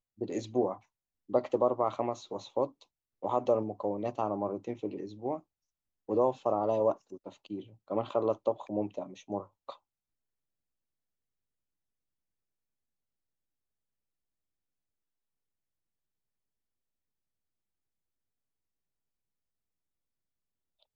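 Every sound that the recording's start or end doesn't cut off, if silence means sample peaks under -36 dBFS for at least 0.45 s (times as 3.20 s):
1.31–2.66 s
3.23–5.37 s
6.09–9.70 s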